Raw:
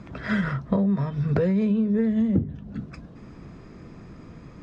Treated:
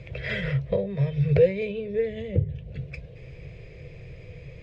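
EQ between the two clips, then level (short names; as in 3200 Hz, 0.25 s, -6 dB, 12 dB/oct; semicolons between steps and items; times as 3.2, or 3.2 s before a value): EQ curve 140 Hz 0 dB, 240 Hz -27 dB, 500 Hz +4 dB, 840 Hz -15 dB, 1300 Hz -20 dB, 2300 Hz +6 dB, 6100 Hz -9 dB; +4.5 dB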